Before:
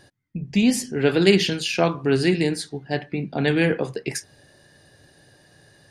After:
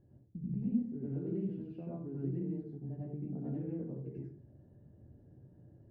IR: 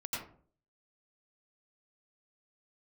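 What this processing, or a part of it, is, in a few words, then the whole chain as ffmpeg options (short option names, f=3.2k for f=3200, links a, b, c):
television next door: -filter_complex "[0:a]acompressor=threshold=-36dB:ratio=3,lowpass=290[a];[1:a]atrim=start_sample=2205[b];[a][b]afir=irnorm=-1:irlink=0,volume=-2dB"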